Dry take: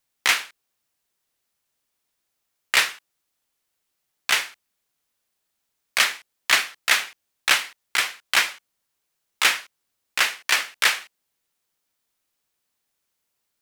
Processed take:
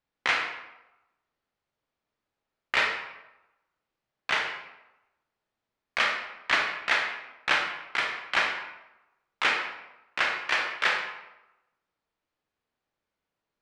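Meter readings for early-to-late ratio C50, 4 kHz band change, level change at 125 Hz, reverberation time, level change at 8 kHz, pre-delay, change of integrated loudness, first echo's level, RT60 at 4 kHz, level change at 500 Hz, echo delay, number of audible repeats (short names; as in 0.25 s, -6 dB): 4.5 dB, -8.5 dB, n/a, 0.95 s, -18.5 dB, 23 ms, -5.5 dB, none, 0.65 s, +1.5 dB, none, none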